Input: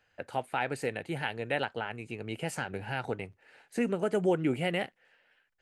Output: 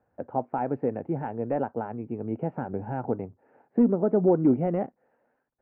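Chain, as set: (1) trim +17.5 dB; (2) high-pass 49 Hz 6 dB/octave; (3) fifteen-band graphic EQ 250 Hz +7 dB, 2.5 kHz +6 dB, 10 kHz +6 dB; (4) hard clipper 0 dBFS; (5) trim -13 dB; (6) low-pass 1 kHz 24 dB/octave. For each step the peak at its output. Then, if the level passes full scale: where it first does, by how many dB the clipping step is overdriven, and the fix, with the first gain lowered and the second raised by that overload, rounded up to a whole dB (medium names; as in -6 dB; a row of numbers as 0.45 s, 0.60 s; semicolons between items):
+3.0 dBFS, +3.0 dBFS, +5.0 dBFS, 0.0 dBFS, -13.0 dBFS, -12.0 dBFS; step 1, 5.0 dB; step 1 +12.5 dB, step 5 -8 dB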